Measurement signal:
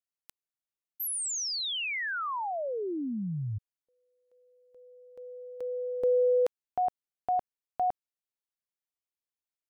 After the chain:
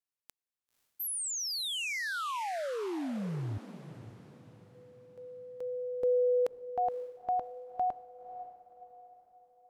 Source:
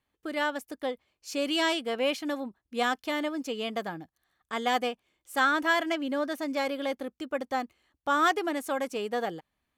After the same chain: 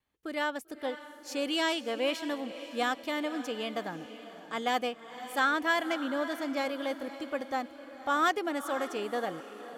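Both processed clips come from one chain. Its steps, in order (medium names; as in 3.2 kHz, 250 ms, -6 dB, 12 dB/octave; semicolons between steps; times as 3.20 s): echo that smears into a reverb 534 ms, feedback 43%, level -12.5 dB; vibrato 0.42 Hz 7.9 cents; trim -2.5 dB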